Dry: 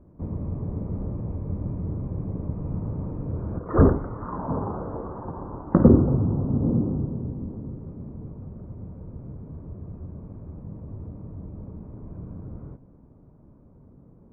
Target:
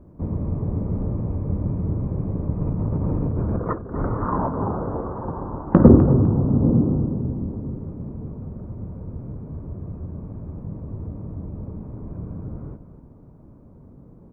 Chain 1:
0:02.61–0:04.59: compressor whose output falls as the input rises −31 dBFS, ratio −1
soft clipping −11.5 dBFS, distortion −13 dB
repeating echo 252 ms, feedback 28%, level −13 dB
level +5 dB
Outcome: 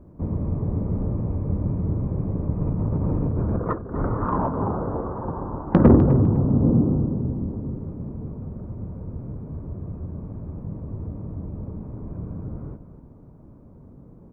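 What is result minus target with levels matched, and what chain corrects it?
soft clipping: distortion +10 dB
0:02.61–0:04.59: compressor whose output falls as the input rises −31 dBFS, ratio −1
soft clipping −4 dBFS, distortion −23 dB
repeating echo 252 ms, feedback 28%, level −13 dB
level +5 dB

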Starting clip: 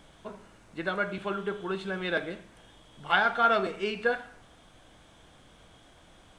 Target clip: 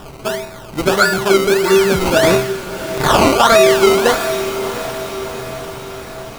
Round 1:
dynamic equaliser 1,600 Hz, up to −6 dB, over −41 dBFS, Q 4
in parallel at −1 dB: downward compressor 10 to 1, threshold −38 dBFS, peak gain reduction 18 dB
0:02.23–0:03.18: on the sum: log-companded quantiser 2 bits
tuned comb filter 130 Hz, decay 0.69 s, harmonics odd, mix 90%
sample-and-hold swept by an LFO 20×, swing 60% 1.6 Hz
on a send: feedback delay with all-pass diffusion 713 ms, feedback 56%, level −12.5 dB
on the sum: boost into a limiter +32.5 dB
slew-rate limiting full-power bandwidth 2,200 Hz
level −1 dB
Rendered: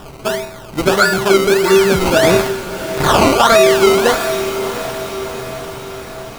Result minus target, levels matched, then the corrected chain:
downward compressor: peak gain reduction −7 dB
dynamic equaliser 1,600 Hz, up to −6 dB, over −41 dBFS, Q 4
in parallel at −1 dB: downward compressor 10 to 1, threshold −46 dBFS, peak gain reduction 25.5 dB
0:02.23–0:03.18: on the sum: log-companded quantiser 2 bits
tuned comb filter 130 Hz, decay 0.69 s, harmonics odd, mix 90%
sample-and-hold swept by an LFO 20×, swing 60% 1.6 Hz
on a send: feedback delay with all-pass diffusion 713 ms, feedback 56%, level −12.5 dB
on the sum: boost into a limiter +32.5 dB
slew-rate limiting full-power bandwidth 2,200 Hz
level −1 dB

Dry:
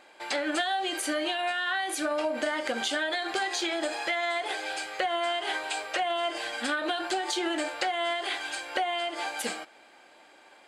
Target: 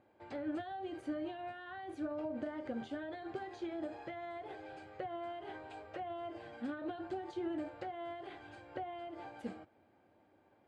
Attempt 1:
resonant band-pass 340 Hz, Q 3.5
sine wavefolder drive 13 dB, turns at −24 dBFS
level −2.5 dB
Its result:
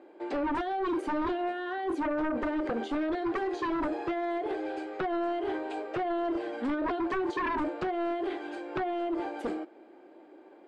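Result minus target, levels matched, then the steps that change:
125 Hz band −5.0 dB
change: resonant band-pass 99 Hz, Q 3.5

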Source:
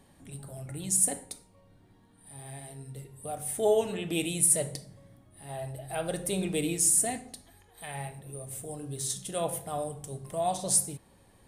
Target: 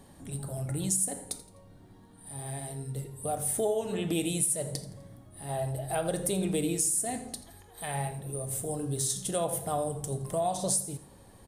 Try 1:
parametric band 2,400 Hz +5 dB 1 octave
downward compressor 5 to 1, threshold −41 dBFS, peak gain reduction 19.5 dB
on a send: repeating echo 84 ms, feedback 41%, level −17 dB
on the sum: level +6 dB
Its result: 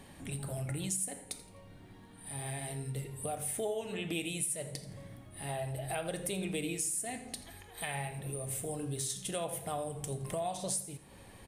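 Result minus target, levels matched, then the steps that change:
2,000 Hz band +7.5 dB; downward compressor: peak gain reduction +7 dB
change: parametric band 2,400 Hz −5.5 dB 1 octave
change: downward compressor 5 to 1, threshold −32.5 dBFS, peak gain reduction 12.5 dB

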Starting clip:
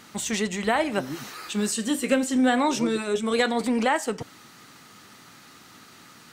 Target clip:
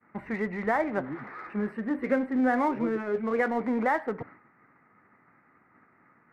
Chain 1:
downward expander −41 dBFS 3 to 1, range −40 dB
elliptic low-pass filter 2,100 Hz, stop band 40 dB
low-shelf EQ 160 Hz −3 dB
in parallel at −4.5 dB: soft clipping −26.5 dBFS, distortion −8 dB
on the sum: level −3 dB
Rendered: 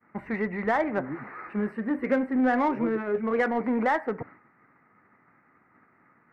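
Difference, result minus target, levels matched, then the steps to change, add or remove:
soft clipping: distortion −5 dB
change: soft clipping −38.5 dBFS, distortion −2 dB

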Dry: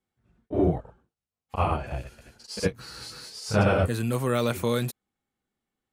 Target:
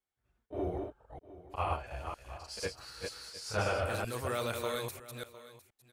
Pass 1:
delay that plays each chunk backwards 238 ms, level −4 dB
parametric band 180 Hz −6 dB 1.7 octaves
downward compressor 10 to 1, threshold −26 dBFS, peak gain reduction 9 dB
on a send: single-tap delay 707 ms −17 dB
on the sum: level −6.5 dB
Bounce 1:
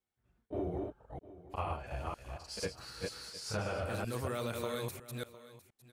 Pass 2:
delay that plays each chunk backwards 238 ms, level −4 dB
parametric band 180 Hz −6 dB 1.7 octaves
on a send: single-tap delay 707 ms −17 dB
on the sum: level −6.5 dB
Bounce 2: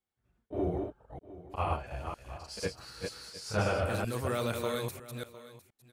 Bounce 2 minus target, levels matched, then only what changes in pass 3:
250 Hz band +3.5 dB
change: parametric band 180 Hz −14.5 dB 1.7 octaves

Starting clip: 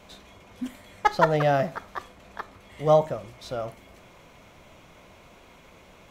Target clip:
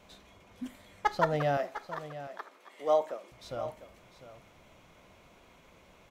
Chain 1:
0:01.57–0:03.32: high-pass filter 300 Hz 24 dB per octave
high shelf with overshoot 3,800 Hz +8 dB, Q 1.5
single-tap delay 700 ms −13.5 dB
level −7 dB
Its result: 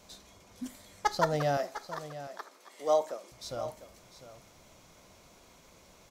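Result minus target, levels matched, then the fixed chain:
8,000 Hz band +10.0 dB
0:01.57–0:03.32: high-pass filter 300 Hz 24 dB per octave
single-tap delay 700 ms −13.5 dB
level −7 dB

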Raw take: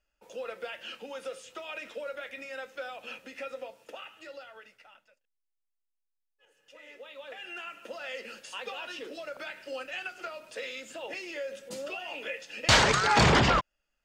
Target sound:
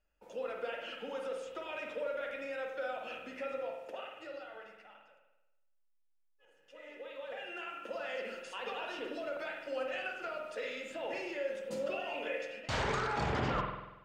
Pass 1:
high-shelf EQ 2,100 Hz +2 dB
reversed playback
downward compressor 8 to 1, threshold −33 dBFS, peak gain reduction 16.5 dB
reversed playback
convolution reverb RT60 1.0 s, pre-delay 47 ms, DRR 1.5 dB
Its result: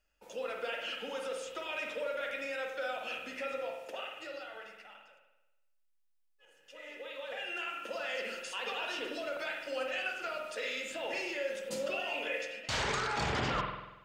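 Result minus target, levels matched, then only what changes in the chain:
4,000 Hz band +4.5 dB
change: high-shelf EQ 2,100 Hz −9 dB

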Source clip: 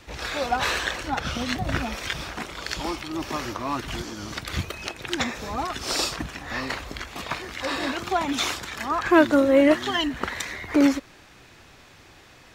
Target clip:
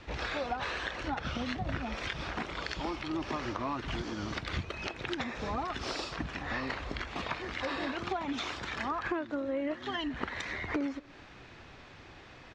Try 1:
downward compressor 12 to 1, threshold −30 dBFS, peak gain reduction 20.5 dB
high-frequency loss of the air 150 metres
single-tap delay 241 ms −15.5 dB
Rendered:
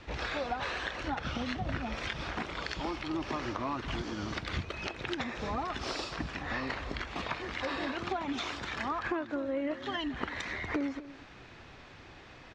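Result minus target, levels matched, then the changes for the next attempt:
echo-to-direct +11.5 dB
change: single-tap delay 241 ms −27 dB

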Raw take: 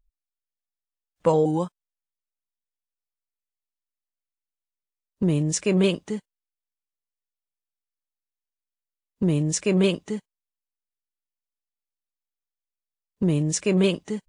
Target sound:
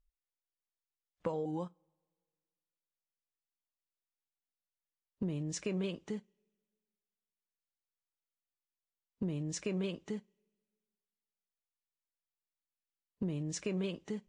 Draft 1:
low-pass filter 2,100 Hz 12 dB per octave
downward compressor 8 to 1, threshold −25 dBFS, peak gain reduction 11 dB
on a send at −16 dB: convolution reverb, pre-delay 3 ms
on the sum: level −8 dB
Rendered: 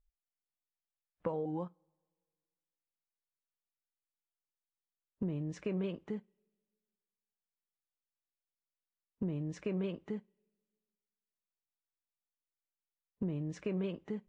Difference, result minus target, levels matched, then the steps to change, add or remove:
8,000 Hz band −16.0 dB
change: low-pass filter 5,900 Hz 12 dB per octave

